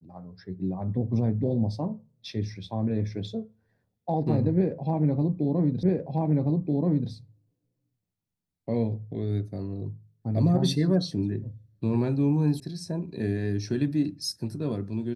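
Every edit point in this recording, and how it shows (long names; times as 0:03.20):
0:05.83: the same again, the last 1.28 s
0:12.60: cut off before it has died away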